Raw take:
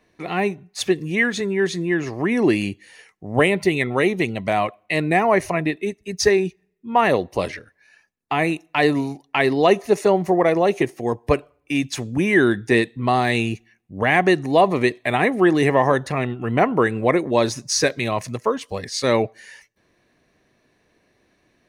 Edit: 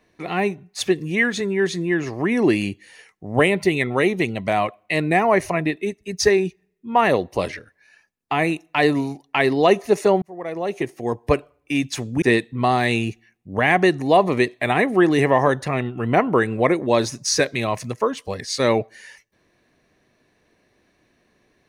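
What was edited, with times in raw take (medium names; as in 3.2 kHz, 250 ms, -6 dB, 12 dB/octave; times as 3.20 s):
10.22–11.23 s: fade in
12.22–12.66 s: delete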